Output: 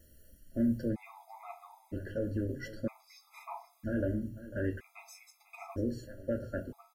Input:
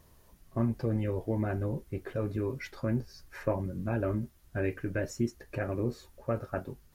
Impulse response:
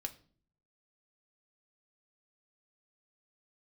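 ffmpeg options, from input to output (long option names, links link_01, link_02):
-filter_complex "[0:a]asetnsamples=nb_out_samples=441:pad=0,asendcmd='0.89 highshelf g 3',highshelf=frequency=6700:gain=9,aecho=1:1:496:0.168[link_01];[1:a]atrim=start_sample=2205[link_02];[link_01][link_02]afir=irnorm=-1:irlink=0,afftfilt=real='re*gt(sin(2*PI*0.52*pts/sr)*(1-2*mod(floor(b*sr/1024/670),2)),0)':imag='im*gt(sin(2*PI*0.52*pts/sr)*(1-2*mod(floor(b*sr/1024/670),2)),0)':win_size=1024:overlap=0.75"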